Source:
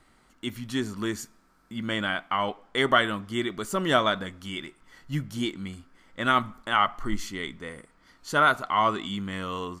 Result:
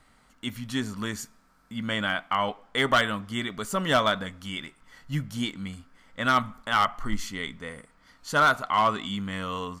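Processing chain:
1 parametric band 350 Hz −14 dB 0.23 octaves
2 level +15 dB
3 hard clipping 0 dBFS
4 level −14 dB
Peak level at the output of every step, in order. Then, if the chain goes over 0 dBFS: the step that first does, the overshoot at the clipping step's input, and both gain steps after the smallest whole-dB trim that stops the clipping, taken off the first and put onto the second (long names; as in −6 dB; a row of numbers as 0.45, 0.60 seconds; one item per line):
−6.5, +8.5, 0.0, −14.0 dBFS
step 2, 8.5 dB
step 2 +6 dB, step 4 −5 dB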